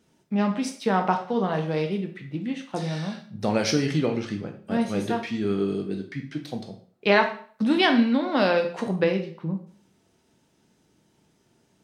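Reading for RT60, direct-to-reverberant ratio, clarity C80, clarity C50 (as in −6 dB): 0.45 s, 4.5 dB, 14.0 dB, 10.0 dB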